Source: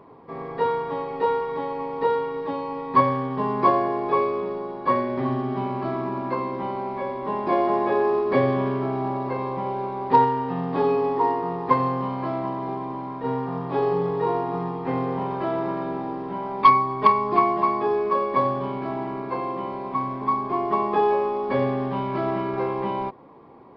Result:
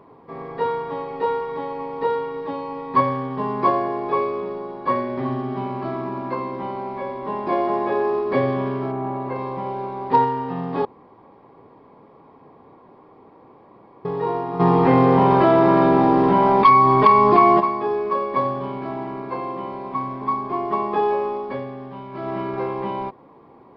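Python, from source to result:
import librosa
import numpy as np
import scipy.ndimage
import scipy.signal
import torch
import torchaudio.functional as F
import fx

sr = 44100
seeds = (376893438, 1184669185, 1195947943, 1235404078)

y = fx.lowpass(x, sr, hz=fx.line((8.91, 2100.0), (9.34, 3700.0)), slope=12, at=(8.91, 9.34), fade=0.02)
y = fx.env_flatten(y, sr, amount_pct=70, at=(14.59, 17.59), fade=0.02)
y = fx.edit(y, sr, fx.room_tone_fill(start_s=10.85, length_s=3.2),
    fx.fade_down_up(start_s=21.33, length_s=1.08, db=-9.0, fade_s=0.3), tone=tone)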